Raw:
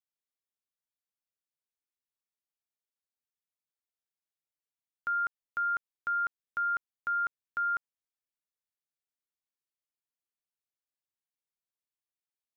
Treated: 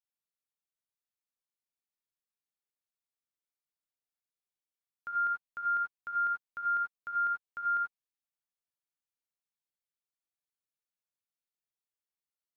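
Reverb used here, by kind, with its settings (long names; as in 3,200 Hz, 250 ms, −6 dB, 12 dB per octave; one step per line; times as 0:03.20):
reverb whose tail is shaped and stops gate 110 ms rising, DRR 1 dB
level −7 dB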